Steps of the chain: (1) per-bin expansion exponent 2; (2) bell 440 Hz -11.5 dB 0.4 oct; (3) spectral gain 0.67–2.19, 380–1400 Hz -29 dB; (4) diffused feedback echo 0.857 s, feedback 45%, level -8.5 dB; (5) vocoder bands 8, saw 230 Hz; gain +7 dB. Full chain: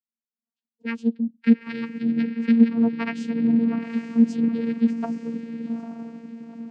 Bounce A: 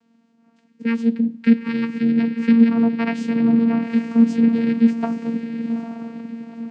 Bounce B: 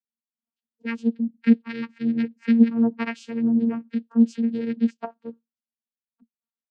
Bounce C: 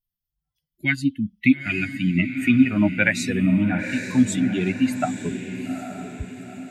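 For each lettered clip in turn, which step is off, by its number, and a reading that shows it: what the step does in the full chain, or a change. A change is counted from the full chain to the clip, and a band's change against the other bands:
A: 1, crest factor change -3.0 dB; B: 4, momentary loudness spread change -2 LU; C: 5, 2 kHz band +9.0 dB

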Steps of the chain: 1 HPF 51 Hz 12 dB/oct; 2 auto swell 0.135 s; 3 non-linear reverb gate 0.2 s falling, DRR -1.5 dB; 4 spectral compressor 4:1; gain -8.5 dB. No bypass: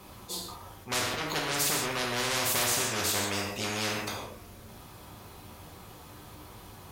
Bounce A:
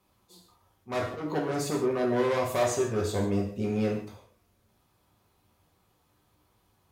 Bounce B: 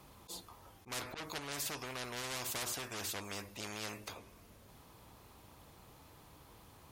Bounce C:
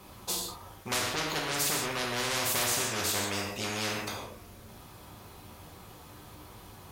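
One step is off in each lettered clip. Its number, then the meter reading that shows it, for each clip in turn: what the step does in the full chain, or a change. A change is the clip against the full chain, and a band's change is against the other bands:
4, 4 kHz band -15.0 dB; 3, crest factor change +4.0 dB; 2, loudness change -1.0 LU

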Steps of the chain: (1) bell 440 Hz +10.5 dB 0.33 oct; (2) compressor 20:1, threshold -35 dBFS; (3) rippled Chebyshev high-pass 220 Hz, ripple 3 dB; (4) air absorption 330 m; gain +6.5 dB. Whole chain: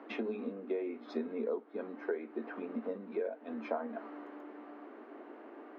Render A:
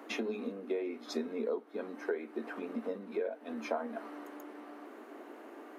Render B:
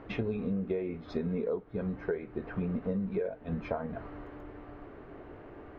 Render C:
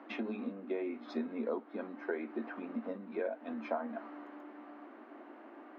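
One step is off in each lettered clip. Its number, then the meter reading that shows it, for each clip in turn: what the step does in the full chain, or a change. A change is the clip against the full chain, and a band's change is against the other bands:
4, 2 kHz band +2.5 dB; 3, 250 Hz band +4.0 dB; 1, 500 Hz band -3.0 dB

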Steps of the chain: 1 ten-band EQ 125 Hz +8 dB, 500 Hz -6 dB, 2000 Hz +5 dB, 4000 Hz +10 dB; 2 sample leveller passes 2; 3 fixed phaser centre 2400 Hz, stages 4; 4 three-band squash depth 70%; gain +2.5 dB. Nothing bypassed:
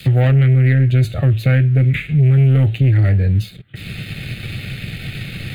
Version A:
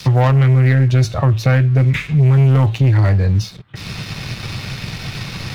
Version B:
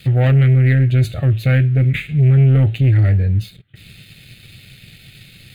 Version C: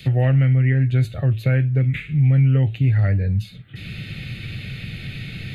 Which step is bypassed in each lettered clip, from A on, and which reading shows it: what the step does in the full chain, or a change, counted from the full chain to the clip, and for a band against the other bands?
3, 500 Hz band +2.5 dB; 4, crest factor change -2.5 dB; 2, loudness change -4.5 LU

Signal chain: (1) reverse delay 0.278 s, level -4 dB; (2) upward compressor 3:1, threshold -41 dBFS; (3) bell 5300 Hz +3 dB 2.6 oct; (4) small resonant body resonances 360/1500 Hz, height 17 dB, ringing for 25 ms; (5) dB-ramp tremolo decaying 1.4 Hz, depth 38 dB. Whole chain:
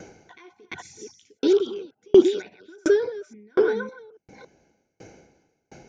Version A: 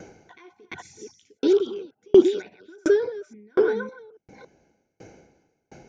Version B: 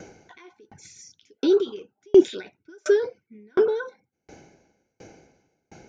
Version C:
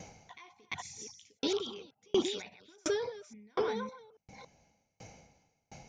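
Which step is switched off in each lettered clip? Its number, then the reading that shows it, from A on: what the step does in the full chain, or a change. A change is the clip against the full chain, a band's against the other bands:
3, momentary loudness spread change +1 LU; 1, momentary loudness spread change -3 LU; 4, 4 kHz band +11.0 dB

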